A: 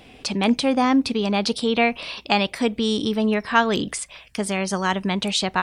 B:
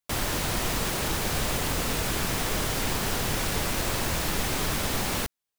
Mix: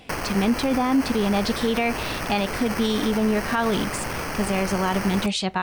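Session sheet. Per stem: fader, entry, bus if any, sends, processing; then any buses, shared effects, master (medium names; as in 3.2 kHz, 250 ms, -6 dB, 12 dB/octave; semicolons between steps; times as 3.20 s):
-5.5 dB, 0.00 s, no send, harmonic-percussive split harmonic +8 dB
+2.0 dB, 0.00 s, no send, treble shelf 4.8 kHz +9.5 dB; sample-and-hold 12×; auto duck -7 dB, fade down 0.20 s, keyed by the first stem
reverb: none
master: peak limiter -13 dBFS, peak gain reduction 11.5 dB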